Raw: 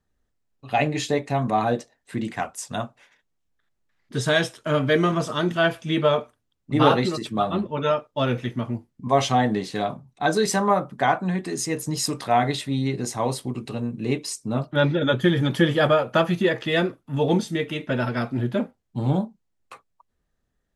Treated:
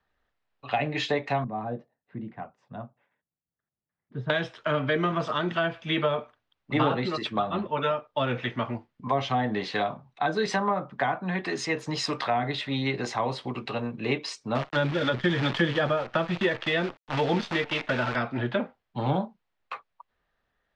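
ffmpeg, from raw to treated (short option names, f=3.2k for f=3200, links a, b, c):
-filter_complex "[0:a]asettb=1/sr,asplit=3[a][b][c];[a]atrim=end=1.444[d];[b]atrim=start=1.44:end=4.3,asetpts=PTS-STARTPTS,afade=t=in:d=0.004:c=qsin,afade=t=out:st=2.856:d=0.004:c=qsin,bandpass=f=150:t=q:w=1.4[e];[c]atrim=start=4.296[f];[d][e]acrossfade=d=0.004:c1=hsin:c2=qsin[g];[g][f]acrossfade=d=0.004:c1=qsin:c2=hsin,asettb=1/sr,asplit=3[h][i][j];[h]atrim=end=14.554[k];[i]atrim=start=14.55:end=18.16,asetpts=PTS-STARTPTS,afade=t=in:d=0.004:c=qsin,afade=t=out:st=3.606:d=0.004:c=qsin,acrusher=bits=6:dc=4:mix=0:aa=0.000001[l];[j]atrim=start=18.156[m];[k][l]acrossfade=d=0.004:c1=hsin:c2=qsin[n];[n][m]acrossfade=d=0.004:c1=qsin:c2=hsin,lowpass=6.9k,acrossover=split=570 4200:gain=0.2 1 0.0631[o][p][q];[o][p][q]amix=inputs=3:normalize=0,acrossover=split=330[r][s];[s]acompressor=threshold=-33dB:ratio=10[t];[r][t]amix=inputs=2:normalize=0,volume=8dB"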